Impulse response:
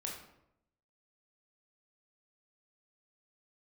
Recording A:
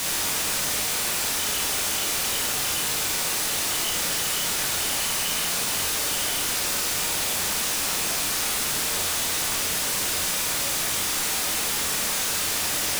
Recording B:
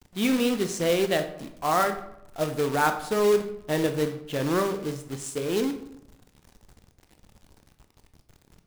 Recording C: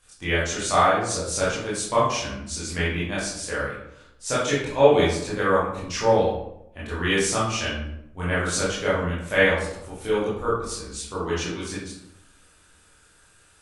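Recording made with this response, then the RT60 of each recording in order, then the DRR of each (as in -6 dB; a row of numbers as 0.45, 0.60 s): A; 0.80, 0.80, 0.80 s; -1.5, 7.0, -9.5 dB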